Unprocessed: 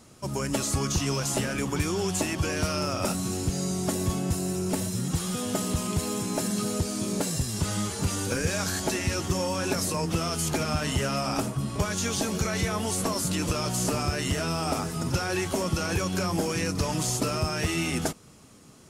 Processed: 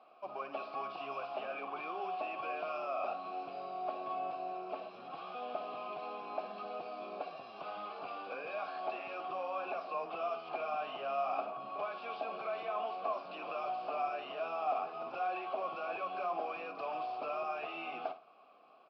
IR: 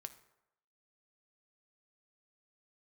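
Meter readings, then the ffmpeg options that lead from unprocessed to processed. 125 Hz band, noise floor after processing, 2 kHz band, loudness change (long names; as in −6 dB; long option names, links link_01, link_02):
below −35 dB, −54 dBFS, −12.0 dB, −12.0 dB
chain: -filter_complex "[0:a]highpass=180,asplit=2[link_01][link_02];[link_02]highpass=frequency=720:poles=1,volume=19dB,asoftclip=type=tanh:threshold=-13dB[link_03];[link_01][link_03]amix=inputs=2:normalize=0,lowpass=frequency=1800:poles=1,volume=-6dB,asplit=3[link_04][link_05][link_06];[link_04]bandpass=frequency=730:width_type=q:width=8,volume=0dB[link_07];[link_05]bandpass=frequency=1090:width_type=q:width=8,volume=-6dB[link_08];[link_06]bandpass=frequency=2440:width_type=q:width=8,volume=-9dB[link_09];[link_07][link_08][link_09]amix=inputs=3:normalize=0,asplit=2[link_10][link_11];[1:a]atrim=start_sample=2205,adelay=57[link_12];[link_11][link_12]afir=irnorm=-1:irlink=0,volume=-6.5dB[link_13];[link_10][link_13]amix=inputs=2:normalize=0,aresample=11025,aresample=44100,volume=-3.5dB"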